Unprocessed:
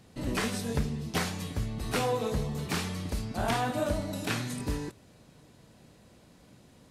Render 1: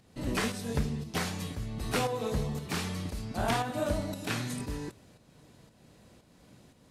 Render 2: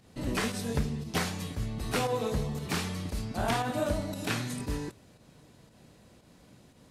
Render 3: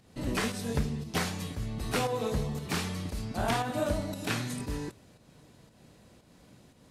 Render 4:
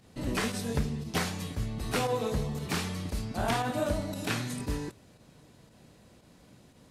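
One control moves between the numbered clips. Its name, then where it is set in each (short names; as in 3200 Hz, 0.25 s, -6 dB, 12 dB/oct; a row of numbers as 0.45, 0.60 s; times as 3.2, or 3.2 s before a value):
pump, release: 456, 110, 223, 73 ms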